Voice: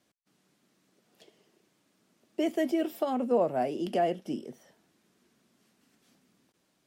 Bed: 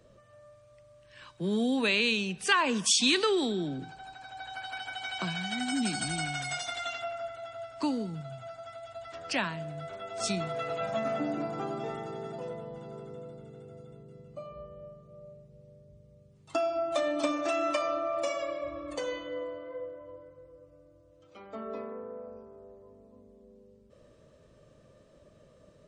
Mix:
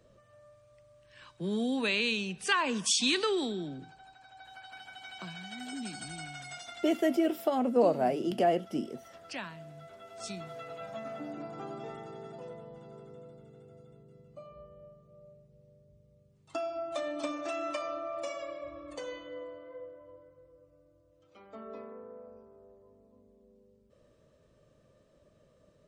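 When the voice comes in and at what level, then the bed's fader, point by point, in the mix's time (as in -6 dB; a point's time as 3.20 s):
4.45 s, +1.0 dB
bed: 3.39 s -3 dB
4.16 s -9.5 dB
11.14 s -9.5 dB
11.72 s -6 dB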